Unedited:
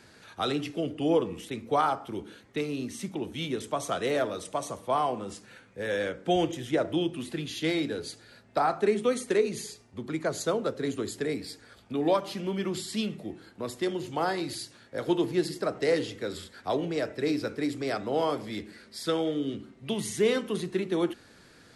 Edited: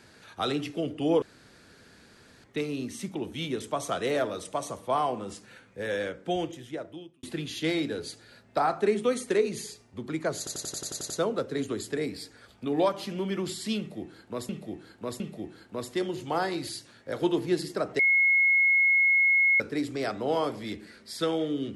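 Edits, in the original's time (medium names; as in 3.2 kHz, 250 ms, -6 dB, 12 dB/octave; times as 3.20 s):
1.22–2.44 s: room tone
5.80–7.23 s: fade out
10.38 s: stutter 0.09 s, 9 plays
13.06–13.77 s: loop, 3 plays
15.85–17.46 s: bleep 2.17 kHz -18.5 dBFS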